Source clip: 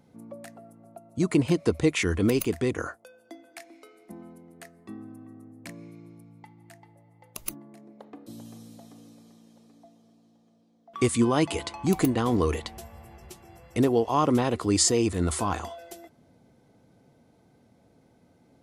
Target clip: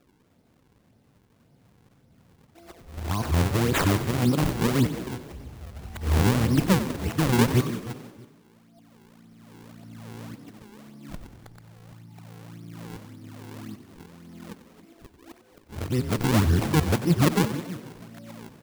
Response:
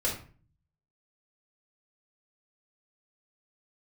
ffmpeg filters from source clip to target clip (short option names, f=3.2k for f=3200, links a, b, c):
-filter_complex "[0:a]areverse,asplit=2[a][b];[b]aecho=0:1:319|638:0.2|0.0419[c];[a][c]amix=inputs=2:normalize=0,asubboost=boost=4:cutoff=210,acrusher=samples=41:mix=1:aa=0.000001:lfo=1:lforange=65.6:lforate=1.8,highshelf=f=10k:g=3,asplit=2[d][e];[e]asplit=7[f][g][h][i][j][k][l];[f]adelay=93,afreqshift=31,volume=-12.5dB[m];[g]adelay=186,afreqshift=62,volume=-17.1dB[n];[h]adelay=279,afreqshift=93,volume=-21.7dB[o];[i]adelay=372,afreqshift=124,volume=-26.2dB[p];[j]adelay=465,afreqshift=155,volume=-30.8dB[q];[k]adelay=558,afreqshift=186,volume=-35.4dB[r];[l]adelay=651,afreqshift=217,volume=-40dB[s];[m][n][o][p][q][r][s]amix=inputs=7:normalize=0[t];[d][t]amix=inputs=2:normalize=0,volume=-3dB"